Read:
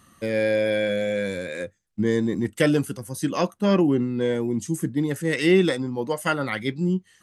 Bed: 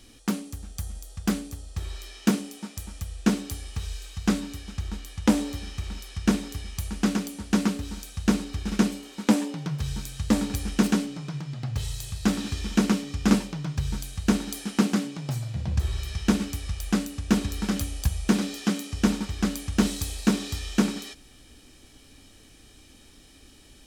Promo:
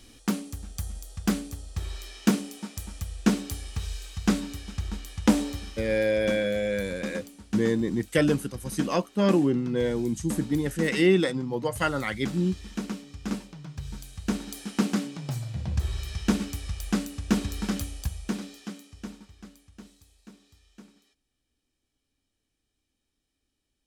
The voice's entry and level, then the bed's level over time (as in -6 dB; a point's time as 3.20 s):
5.55 s, -2.5 dB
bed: 5.48 s 0 dB
6.33 s -11 dB
13.48 s -11 dB
14.97 s -2 dB
17.70 s -2 dB
20.03 s -28 dB